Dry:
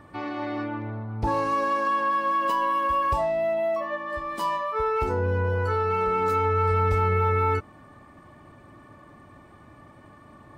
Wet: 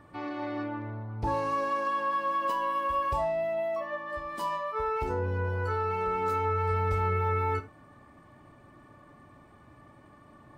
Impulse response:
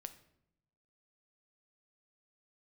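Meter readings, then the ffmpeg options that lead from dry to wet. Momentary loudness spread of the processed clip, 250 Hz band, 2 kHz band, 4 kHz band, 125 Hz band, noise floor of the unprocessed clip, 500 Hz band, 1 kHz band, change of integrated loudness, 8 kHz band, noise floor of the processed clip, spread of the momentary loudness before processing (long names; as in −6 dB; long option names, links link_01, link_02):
7 LU, −5.0 dB, −5.0 dB, −5.0 dB, −5.0 dB, −51 dBFS, −5.0 dB, −5.0 dB, −5.0 dB, can't be measured, −56 dBFS, 9 LU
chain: -filter_complex "[1:a]atrim=start_sample=2205,atrim=end_sample=3969[link_01];[0:a][link_01]afir=irnorm=-1:irlink=0"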